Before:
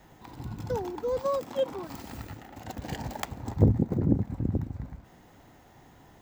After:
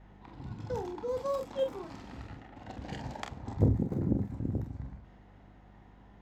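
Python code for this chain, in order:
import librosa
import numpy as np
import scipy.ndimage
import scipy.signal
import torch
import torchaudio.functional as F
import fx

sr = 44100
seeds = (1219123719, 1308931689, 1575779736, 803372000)

y = fx.add_hum(x, sr, base_hz=50, snr_db=20)
y = fx.room_early_taps(y, sr, ms=(30, 45), db=(-9.5, -7.5))
y = fx.env_lowpass(y, sr, base_hz=2700.0, full_db=-23.0)
y = F.gain(torch.from_numpy(y), -5.5).numpy()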